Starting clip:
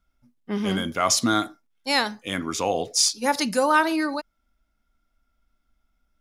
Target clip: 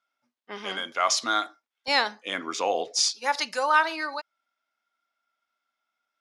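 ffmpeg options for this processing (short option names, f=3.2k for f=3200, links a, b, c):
-af "asetnsamples=n=441:p=0,asendcmd='1.88 highpass f 420;2.99 highpass f 770',highpass=670,lowpass=5.5k"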